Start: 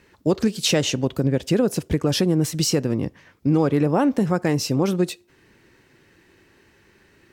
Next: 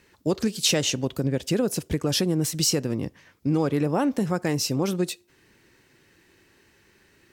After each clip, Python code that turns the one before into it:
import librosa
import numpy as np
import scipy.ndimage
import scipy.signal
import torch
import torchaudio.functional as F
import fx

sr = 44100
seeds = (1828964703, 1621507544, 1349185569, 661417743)

y = fx.high_shelf(x, sr, hz=3400.0, db=7.0)
y = y * librosa.db_to_amplitude(-4.5)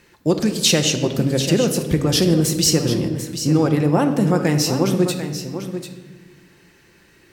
y = x + 10.0 ** (-10.0 / 20.0) * np.pad(x, (int(743 * sr / 1000.0), 0))[:len(x)]
y = fx.room_shoebox(y, sr, seeds[0], volume_m3=1200.0, walls='mixed', distance_m=0.83)
y = y * librosa.db_to_amplitude(5.0)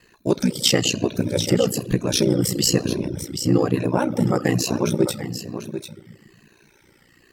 y = fx.spec_ripple(x, sr, per_octave=1.5, drift_hz=-1.1, depth_db=10)
y = y * np.sin(2.0 * np.pi * 30.0 * np.arange(len(y)) / sr)
y = fx.dereverb_blind(y, sr, rt60_s=0.51)